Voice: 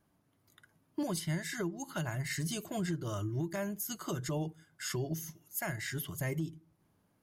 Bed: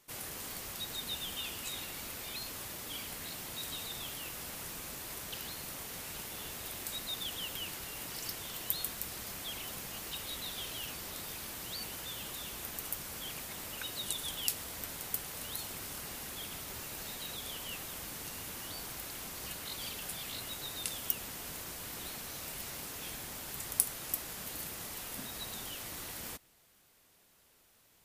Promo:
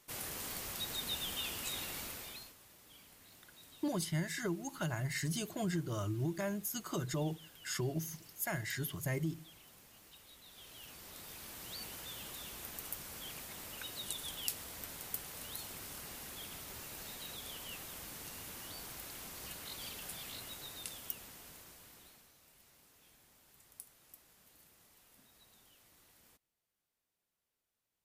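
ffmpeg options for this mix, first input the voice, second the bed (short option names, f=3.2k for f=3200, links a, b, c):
-filter_complex "[0:a]adelay=2850,volume=-1dB[a];[1:a]volume=13dB,afade=t=out:st=1.97:d=0.58:silence=0.133352,afade=t=in:st=10.44:d=1.34:silence=0.223872,afade=t=out:st=20.2:d=2.15:silence=0.125893[b];[a][b]amix=inputs=2:normalize=0"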